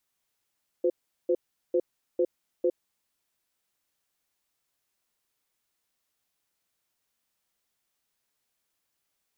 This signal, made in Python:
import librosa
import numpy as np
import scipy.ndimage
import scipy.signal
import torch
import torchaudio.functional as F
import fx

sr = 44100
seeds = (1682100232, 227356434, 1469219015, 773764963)

y = fx.cadence(sr, length_s=2.09, low_hz=357.0, high_hz=512.0, on_s=0.06, off_s=0.39, level_db=-23.5)